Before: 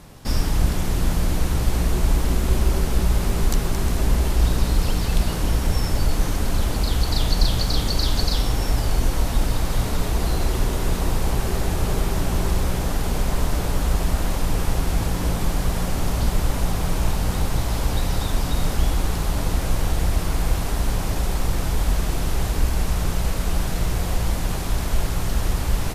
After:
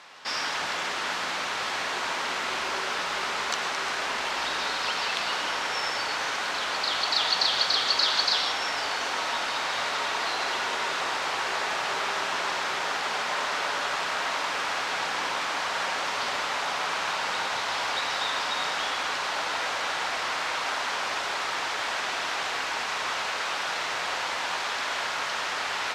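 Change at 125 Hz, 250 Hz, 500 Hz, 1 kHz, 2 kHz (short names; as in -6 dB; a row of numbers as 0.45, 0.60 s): -32.0, -17.5, -5.0, +4.0, +7.5 dB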